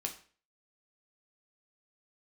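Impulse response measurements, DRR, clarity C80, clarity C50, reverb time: 2.5 dB, 15.0 dB, 11.0 dB, 0.40 s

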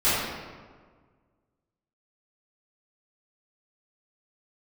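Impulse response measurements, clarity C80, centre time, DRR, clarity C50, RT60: 0.0 dB, 0.106 s, -16.0 dB, -3.0 dB, 1.6 s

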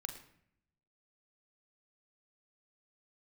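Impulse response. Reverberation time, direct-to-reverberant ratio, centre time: 0.70 s, 5.5 dB, 16 ms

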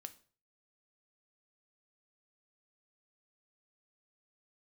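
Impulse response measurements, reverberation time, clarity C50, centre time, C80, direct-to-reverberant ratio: 0.45 s, 17.0 dB, 5 ms, 22.0 dB, 9.5 dB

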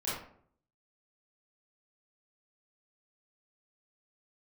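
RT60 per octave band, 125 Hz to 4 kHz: 0.75, 0.70, 0.65, 0.55, 0.45, 0.35 s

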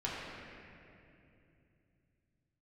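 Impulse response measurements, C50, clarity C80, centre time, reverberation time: -2.0 dB, -0.5 dB, 0.157 s, 2.7 s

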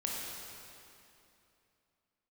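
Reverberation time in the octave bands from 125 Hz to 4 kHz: 3.0, 3.1, 2.9, 2.7, 2.6, 2.4 s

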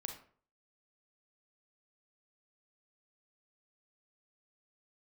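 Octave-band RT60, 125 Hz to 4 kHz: 0.55, 0.50, 0.50, 0.45, 0.40, 0.30 s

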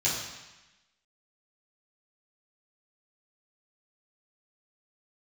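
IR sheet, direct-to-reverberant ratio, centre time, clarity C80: -10.0 dB, 61 ms, 4.5 dB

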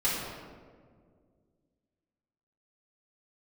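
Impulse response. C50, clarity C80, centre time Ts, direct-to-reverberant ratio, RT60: -0.5 dB, 1.5 dB, 98 ms, -10.5 dB, 1.9 s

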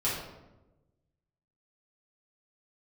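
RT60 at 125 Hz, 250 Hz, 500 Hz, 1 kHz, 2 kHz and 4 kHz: 1.6, 1.3, 1.2, 0.90, 0.75, 0.60 s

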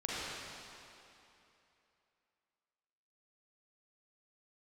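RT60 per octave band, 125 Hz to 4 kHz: 2.6, 2.8, 2.9, 2.9, 2.8, 2.5 s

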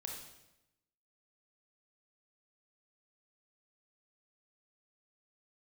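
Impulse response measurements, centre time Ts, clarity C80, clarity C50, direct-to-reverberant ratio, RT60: 44 ms, 6.0 dB, 3.0 dB, 0.0 dB, 0.95 s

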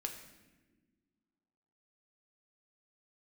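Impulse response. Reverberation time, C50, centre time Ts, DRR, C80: not exponential, 8.0 dB, 22 ms, 3.0 dB, 9.5 dB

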